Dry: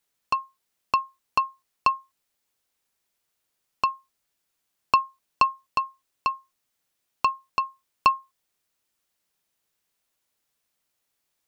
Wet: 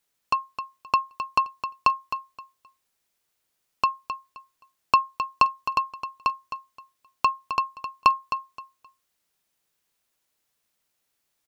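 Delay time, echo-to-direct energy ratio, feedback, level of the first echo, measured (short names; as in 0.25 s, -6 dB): 0.262 s, -10.0 dB, 22%, -10.0 dB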